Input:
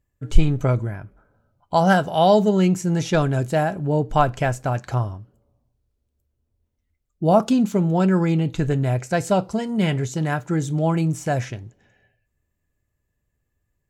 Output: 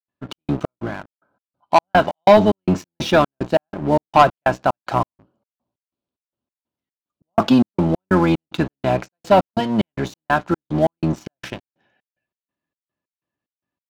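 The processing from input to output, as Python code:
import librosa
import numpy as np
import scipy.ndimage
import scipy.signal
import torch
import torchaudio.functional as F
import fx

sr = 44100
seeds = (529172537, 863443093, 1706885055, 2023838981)

y = fx.octave_divider(x, sr, octaves=1, level_db=-1.0)
y = fx.cabinet(y, sr, low_hz=290.0, low_slope=12, high_hz=4500.0, hz=(450.0, 1000.0, 2000.0), db=(-9, 3, -7))
y = fx.step_gate(y, sr, bpm=185, pattern='.xxx..xx.', floor_db=-60.0, edge_ms=4.5)
y = fx.leveller(y, sr, passes=2)
y = F.gain(torch.from_numpy(y), 2.5).numpy()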